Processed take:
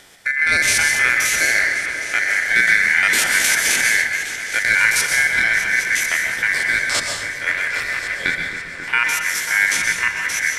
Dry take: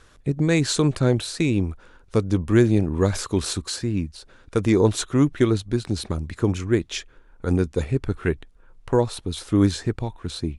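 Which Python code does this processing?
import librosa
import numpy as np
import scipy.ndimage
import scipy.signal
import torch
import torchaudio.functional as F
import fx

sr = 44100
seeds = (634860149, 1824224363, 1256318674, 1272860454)

p1 = fx.spec_steps(x, sr, hold_ms=50)
p2 = fx.high_shelf(p1, sr, hz=3400.0, db=9.0)
p3 = fx.over_compress(p2, sr, threshold_db=-25.0, ratio=-1.0)
p4 = p2 + F.gain(torch.from_numpy(p3), -0.5).numpy()
p5 = fx.overload_stage(p4, sr, gain_db=20.5, at=(7.52, 8.23))
p6 = scipy.signal.sosfilt(scipy.signal.butter(2, 73.0, 'highpass', fs=sr, output='sos'), p5)
p7 = p6 * np.sin(2.0 * np.pi * 1900.0 * np.arange(len(p6)) / sr)
p8 = p7 + fx.echo_opening(p7, sr, ms=270, hz=400, octaves=2, feedback_pct=70, wet_db=-6, dry=0)
p9 = fx.rev_plate(p8, sr, seeds[0], rt60_s=0.76, hf_ratio=0.95, predelay_ms=110, drr_db=3.5)
p10 = fx.band_squash(p9, sr, depth_pct=70, at=(2.67, 4.02))
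y = F.gain(torch.from_numpy(p10), 2.0).numpy()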